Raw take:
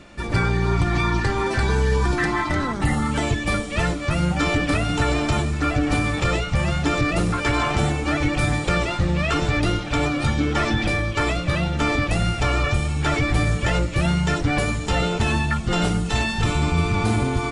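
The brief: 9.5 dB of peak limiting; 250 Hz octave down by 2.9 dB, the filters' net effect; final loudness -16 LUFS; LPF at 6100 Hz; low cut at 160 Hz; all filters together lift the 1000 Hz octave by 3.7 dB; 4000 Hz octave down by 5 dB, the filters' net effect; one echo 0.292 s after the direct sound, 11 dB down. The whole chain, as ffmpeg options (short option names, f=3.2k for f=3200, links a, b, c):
-af "highpass=160,lowpass=6.1k,equalizer=f=250:t=o:g=-3,equalizer=f=1k:t=o:g=5.5,equalizer=f=4k:t=o:g=-6.5,alimiter=limit=-17dB:level=0:latency=1,aecho=1:1:292:0.282,volume=9.5dB"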